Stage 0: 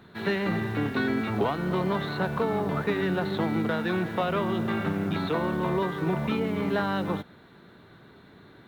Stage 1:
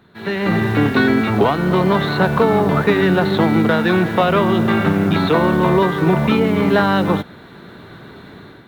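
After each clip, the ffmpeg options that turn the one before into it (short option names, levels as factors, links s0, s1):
-af "dynaudnorm=f=170:g=5:m=5.01"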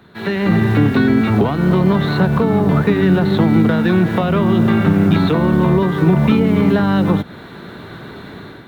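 -filter_complex "[0:a]acrossover=split=280[s0][s1];[s1]acompressor=threshold=0.0447:ratio=3[s2];[s0][s2]amix=inputs=2:normalize=0,volume=1.78"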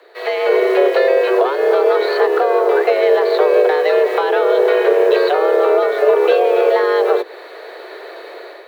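-af "afreqshift=270"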